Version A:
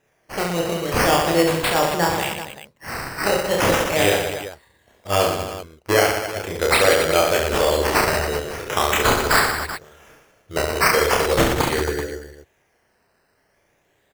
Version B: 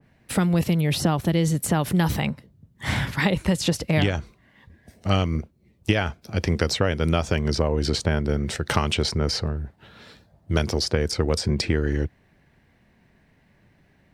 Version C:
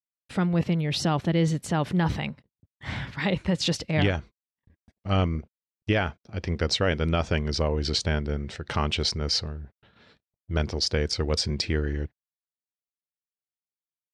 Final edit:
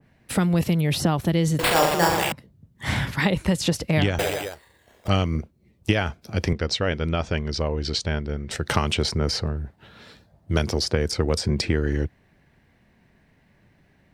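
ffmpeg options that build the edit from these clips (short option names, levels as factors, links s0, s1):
-filter_complex "[0:a]asplit=2[s0][s1];[1:a]asplit=4[s2][s3][s4][s5];[s2]atrim=end=1.592[s6];[s0]atrim=start=1.588:end=2.322[s7];[s3]atrim=start=2.318:end=4.192[s8];[s1]atrim=start=4.188:end=5.082[s9];[s4]atrim=start=5.078:end=6.532[s10];[2:a]atrim=start=6.528:end=8.512[s11];[s5]atrim=start=8.508[s12];[s6][s7]acrossfade=d=0.004:c1=hsin:c2=hsin[s13];[s13][s8]acrossfade=d=0.004:c1=hsin:c2=hsin[s14];[s14][s9]acrossfade=d=0.004:c1=hsin:c2=hsin[s15];[s15][s10]acrossfade=d=0.004:c1=hsin:c2=hsin[s16];[s16][s11]acrossfade=d=0.004:c1=hsin:c2=hsin[s17];[s17][s12]acrossfade=d=0.004:c1=hsin:c2=hsin"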